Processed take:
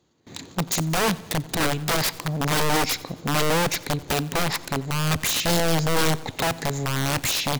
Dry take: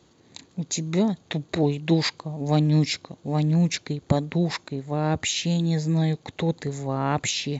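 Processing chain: G.711 law mismatch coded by mu; gate with hold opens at -41 dBFS; in parallel at -2.5 dB: compressor 20:1, threshold -28 dBFS, peak gain reduction 14.5 dB; on the sum: wrapped overs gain 17 dB; feedback echo 90 ms, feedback 53%, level -21 dB; on a send at -23.5 dB: reverb RT60 2.0 s, pre-delay 6 ms

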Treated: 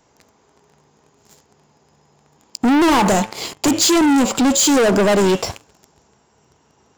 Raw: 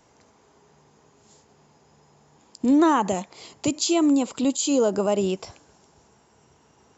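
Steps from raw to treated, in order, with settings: de-hum 109.8 Hz, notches 32; sample leveller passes 3; soft clip -19 dBFS, distortion -13 dB; gain +7 dB

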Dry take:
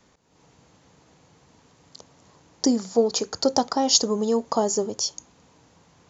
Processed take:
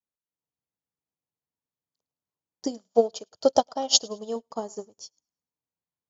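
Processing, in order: 2.67–4.36 thirty-one-band EQ 250 Hz -4 dB, 630 Hz +11 dB, 2000 Hz -4 dB, 3150 Hz +10 dB; thinning echo 0.106 s, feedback 39%, high-pass 500 Hz, level -15 dB; upward expander 2.5:1, over -41 dBFS

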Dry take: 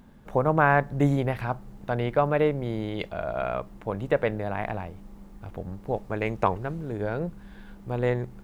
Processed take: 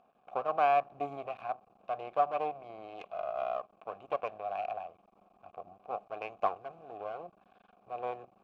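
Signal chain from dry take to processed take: half-wave rectifier; vowel filter a; gain +5.5 dB

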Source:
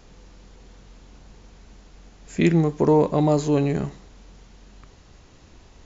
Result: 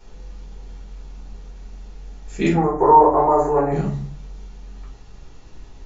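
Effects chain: 2.53–3.72 EQ curve 100 Hz 0 dB, 180 Hz -21 dB, 350 Hz +2 dB, 530 Hz +3 dB, 760 Hz +10 dB, 1100 Hz +11 dB, 1900 Hz +2 dB, 3300 Hz -30 dB, 10000 Hz +2 dB; reverb RT60 0.35 s, pre-delay 5 ms, DRR -5.5 dB; gain -7 dB

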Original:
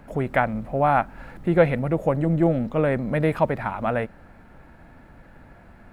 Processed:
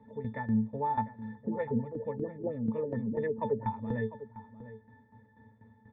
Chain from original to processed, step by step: HPF 100 Hz; octave resonator A, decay 0.21 s; 1.35–3.67 LFO low-pass sine 4.4 Hz 290–3000 Hz; tremolo saw down 4.1 Hz, depth 75%; outdoor echo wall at 120 m, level -14 dB; gain +6.5 dB

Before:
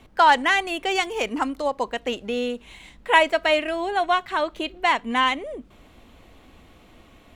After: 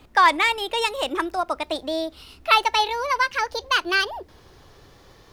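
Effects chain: speed glide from 113% -> 163%; requantised 12-bit, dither none

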